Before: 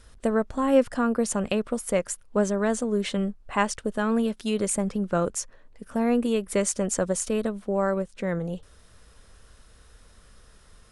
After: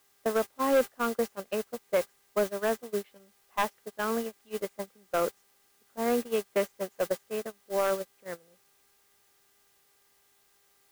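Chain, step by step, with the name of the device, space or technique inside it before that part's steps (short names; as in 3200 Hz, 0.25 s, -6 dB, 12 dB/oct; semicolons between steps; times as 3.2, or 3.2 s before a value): aircraft radio (BPF 360–2700 Hz; hard clip -19 dBFS, distortion -14 dB; buzz 400 Hz, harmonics 5, -50 dBFS -1 dB/oct; white noise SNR 10 dB; gate -27 dBFS, range -26 dB)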